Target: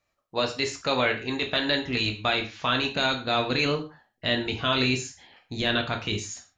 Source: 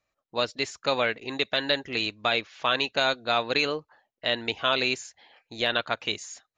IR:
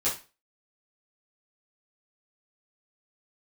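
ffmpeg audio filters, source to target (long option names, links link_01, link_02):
-filter_complex "[0:a]asubboost=boost=5:cutoff=230,alimiter=limit=-16.5dB:level=0:latency=1:release=11,asplit=2[link_01][link_02];[1:a]atrim=start_sample=2205,atrim=end_sample=6174,asetrate=34839,aresample=44100[link_03];[link_02][link_03]afir=irnorm=-1:irlink=0,volume=-11dB[link_04];[link_01][link_04]amix=inputs=2:normalize=0"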